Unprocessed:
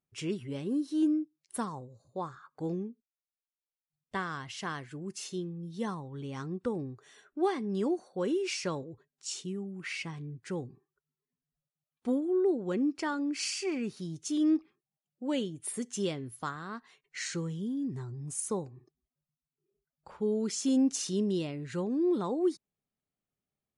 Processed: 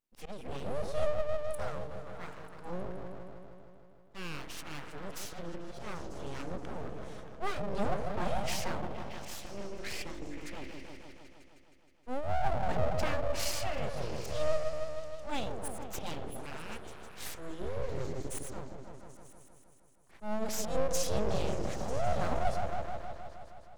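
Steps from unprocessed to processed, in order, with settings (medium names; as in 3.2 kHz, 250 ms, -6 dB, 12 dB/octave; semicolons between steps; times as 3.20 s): slow attack 129 ms; delay with an opening low-pass 157 ms, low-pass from 400 Hz, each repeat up 1 oct, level -3 dB; full-wave rectifier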